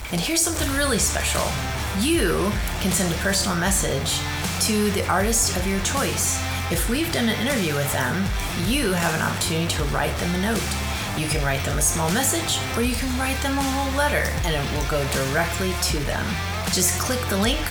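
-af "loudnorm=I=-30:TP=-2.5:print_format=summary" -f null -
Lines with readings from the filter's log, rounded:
Input Integrated:    -22.2 LUFS
Input True Peak:      -7.5 dBTP
Input LRA:             1.2 LU
Input Threshold:     -32.2 LUFS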